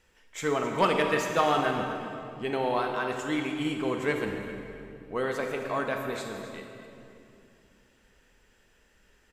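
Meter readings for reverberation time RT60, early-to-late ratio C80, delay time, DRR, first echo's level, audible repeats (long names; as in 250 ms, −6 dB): 2.7 s, 4.5 dB, 262 ms, 3.0 dB, −14.0 dB, 1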